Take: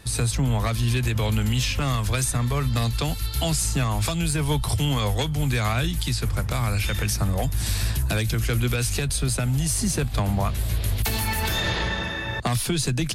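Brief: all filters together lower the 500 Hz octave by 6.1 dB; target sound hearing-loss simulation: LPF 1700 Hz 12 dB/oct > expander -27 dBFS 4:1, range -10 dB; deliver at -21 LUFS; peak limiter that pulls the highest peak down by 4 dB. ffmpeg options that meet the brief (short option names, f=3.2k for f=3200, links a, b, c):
-af "equalizer=f=500:t=o:g=-8,alimiter=limit=-17.5dB:level=0:latency=1,lowpass=1.7k,agate=range=-10dB:threshold=-27dB:ratio=4,volume=7dB"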